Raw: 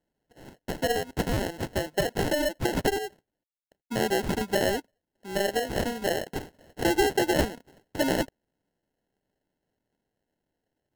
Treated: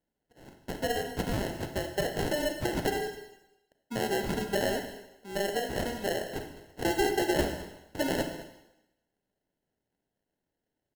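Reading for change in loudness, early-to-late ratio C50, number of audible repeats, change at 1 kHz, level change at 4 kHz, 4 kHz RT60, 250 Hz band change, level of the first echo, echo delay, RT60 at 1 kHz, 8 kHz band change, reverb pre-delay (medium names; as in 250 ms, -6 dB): -3.5 dB, 7.0 dB, 1, -3.5 dB, -3.5 dB, 0.90 s, -3.5 dB, -16.5 dB, 209 ms, 0.90 s, -3.5 dB, 31 ms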